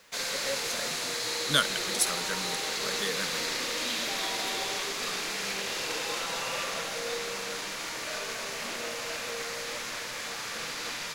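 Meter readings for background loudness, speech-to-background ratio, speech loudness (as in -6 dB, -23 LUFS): -31.0 LUFS, -1.5 dB, -32.5 LUFS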